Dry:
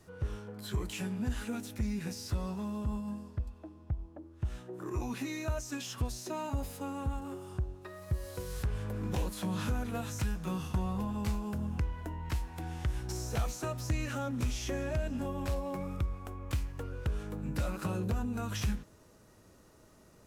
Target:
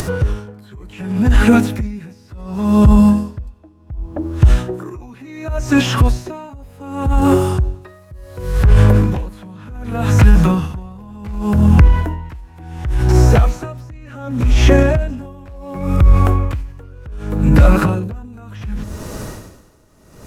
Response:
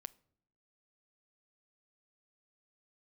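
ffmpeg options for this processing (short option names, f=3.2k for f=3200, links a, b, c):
-filter_complex "[0:a]acrossover=split=2700[a][b];[b]acompressor=threshold=-59dB:ratio=4:attack=1:release=60[c];[a][c]amix=inputs=2:normalize=0,lowshelf=f=110:g=6,acompressor=mode=upward:threshold=-48dB:ratio=2.5,asplit=2[d][e];[1:a]atrim=start_sample=2205[f];[e][f]afir=irnorm=-1:irlink=0,volume=7.5dB[g];[d][g]amix=inputs=2:normalize=0,alimiter=level_in=22.5dB:limit=-1dB:release=50:level=0:latency=1,aeval=exprs='val(0)*pow(10,-28*(0.5-0.5*cos(2*PI*0.68*n/s))/20)':c=same"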